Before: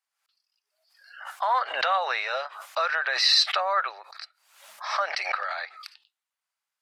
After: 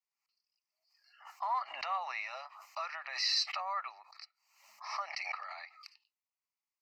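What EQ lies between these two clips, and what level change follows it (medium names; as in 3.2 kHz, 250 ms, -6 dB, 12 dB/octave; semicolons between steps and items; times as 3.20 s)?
peaking EQ 600 Hz -3 dB 1 oct; static phaser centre 2.3 kHz, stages 8; band-stop 3.8 kHz, Q 20; -8.0 dB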